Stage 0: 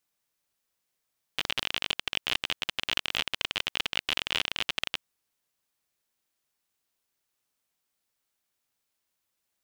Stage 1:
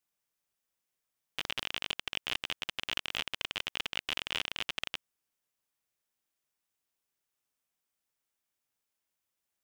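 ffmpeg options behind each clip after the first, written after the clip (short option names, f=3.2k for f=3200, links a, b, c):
-af "equalizer=f=4.2k:w=4.2:g=-3.5,volume=-5dB"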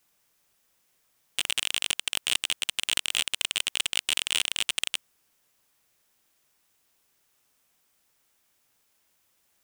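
-af "aeval=exprs='0.237*sin(PI/2*3.98*val(0)/0.237)':c=same"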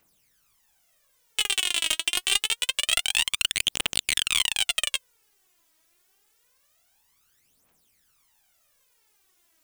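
-af "aphaser=in_gain=1:out_gain=1:delay=3.2:decay=0.72:speed=0.26:type=triangular"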